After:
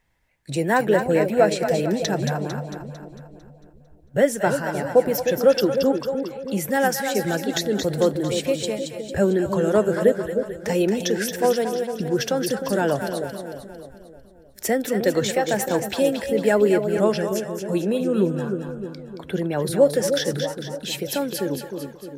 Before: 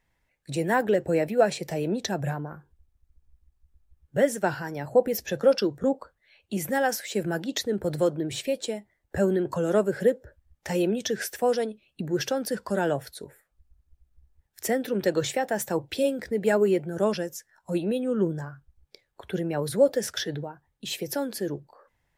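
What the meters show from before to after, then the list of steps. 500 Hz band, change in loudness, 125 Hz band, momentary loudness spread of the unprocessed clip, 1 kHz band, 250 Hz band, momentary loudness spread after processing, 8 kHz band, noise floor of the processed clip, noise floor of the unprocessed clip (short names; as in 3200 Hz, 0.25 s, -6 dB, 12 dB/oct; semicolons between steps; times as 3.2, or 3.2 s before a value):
+5.0 dB, +5.0 dB, +5.0 dB, 12 LU, +5.0 dB, +5.0 dB, 12 LU, +5.0 dB, -49 dBFS, -74 dBFS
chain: split-band echo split 620 Hz, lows 0.307 s, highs 0.225 s, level -6.5 dB; gain +4 dB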